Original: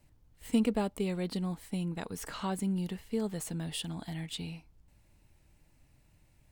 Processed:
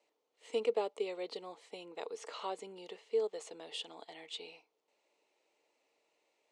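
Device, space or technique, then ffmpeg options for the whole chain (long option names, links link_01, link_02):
phone speaker on a table: -filter_complex "[0:a]asettb=1/sr,asplit=3[link_01][link_02][link_03];[link_01]atrim=end=3.274[link_04];[link_02]atrim=start=3.27:end=4.26,asetpts=PTS-STARTPTS,afade=type=in:duration=0.004:curve=qsin,afade=type=out:start_time=0.986:duration=0.004:curve=qsin,agate=range=-11dB:threshold=-41dB:ratio=16:detection=peak[link_05];[link_03]atrim=start=4.256[link_06];[link_04][link_05]acrossfade=duration=0.004:curve1=hsin:curve2=qsin[link_07];[link_07][link_06]acrossfade=duration=0.004:curve1=qsin:curve2=hsin,highpass=frequency=420:width=0.5412,highpass=frequency=420:width=1.3066,equalizer=frequency=450:width_type=q:width=4:gain=9,equalizer=frequency=1600:width_type=q:width=4:gain=-10,equalizer=frequency=5200:width_type=q:width=4:gain=-4,lowpass=frequency=6600:width=0.5412,lowpass=frequency=6600:width=1.3066,volume=-2dB"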